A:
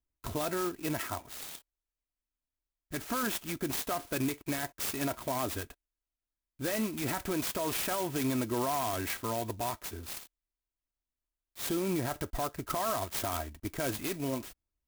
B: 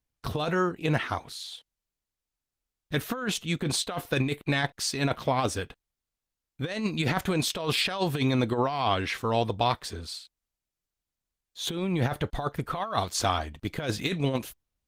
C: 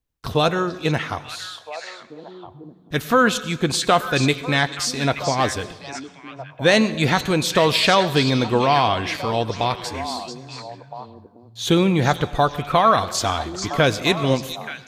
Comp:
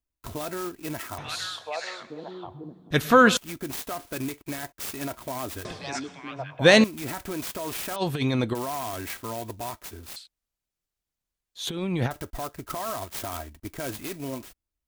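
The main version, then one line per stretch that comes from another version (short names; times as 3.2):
A
1.18–3.37 from C
5.65–6.84 from C
7.96–8.55 from B
10.16–12.11 from B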